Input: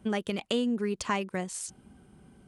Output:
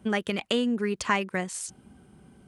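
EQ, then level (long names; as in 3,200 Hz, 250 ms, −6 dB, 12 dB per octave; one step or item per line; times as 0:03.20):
high-pass filter 47 Hz
dynamic equaliser 1,800 Hz, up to +6 dB, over −47 dBFS, Q 1.1
+2.0 dB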